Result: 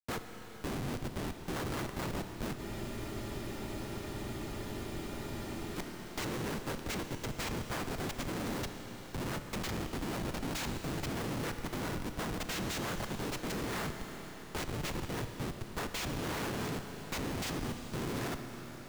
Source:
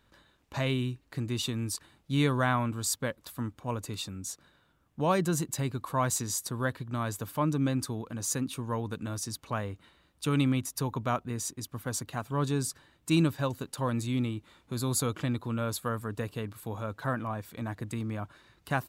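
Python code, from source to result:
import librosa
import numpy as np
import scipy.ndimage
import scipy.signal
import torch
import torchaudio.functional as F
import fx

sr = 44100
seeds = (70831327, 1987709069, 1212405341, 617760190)

y = np.flip(x).copy()
y = fx.noise_vocoder(y, sr, seeds[0], bands=3)
y = fx.echo_wet_highpass(y, sr, ms=505, feedback_pct=82, hz=5200.0, wet_db=-11)
y = fx.schmitt(y, sr, flips_db=-35.5)
y = fx.rev_schroeder(y, sr, rt60_s=3.1, comb_ms=26, drr_db=7.0)
y = fx.spec_freeze(y, sr, seeds[1], at_s=2.59, hold_s=3.17)
y = fx.band_squash(y, sr, depth_pct=40)
y = y * 10.0 ** (-4.5 / 20.0)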